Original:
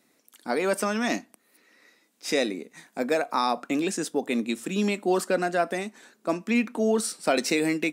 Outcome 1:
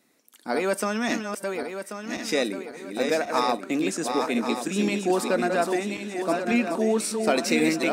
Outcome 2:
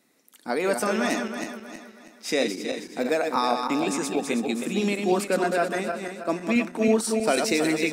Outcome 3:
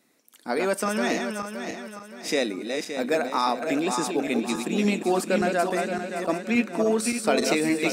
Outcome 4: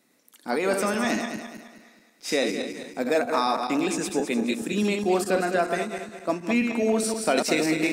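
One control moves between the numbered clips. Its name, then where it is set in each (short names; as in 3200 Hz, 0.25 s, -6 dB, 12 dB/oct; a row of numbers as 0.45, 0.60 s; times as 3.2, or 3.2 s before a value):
regenerating reverse delay, time: 0.543, 0.16, 0.285, 0.105 s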